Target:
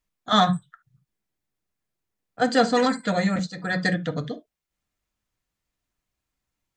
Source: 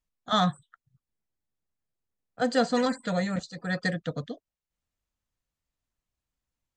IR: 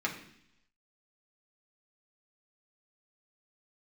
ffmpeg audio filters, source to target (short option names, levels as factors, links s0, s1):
-filter_complex "[0:a]asplit=2[s0][s1];[1:a]atrim=start_sample=2205,atrim=end_sample=3528[s2];[s1][s2]afir=irnorm=-1:irlink=0,volume=0.376[s3];[s0][s3]amix=inputs=2:normalize=0,volume=1.33"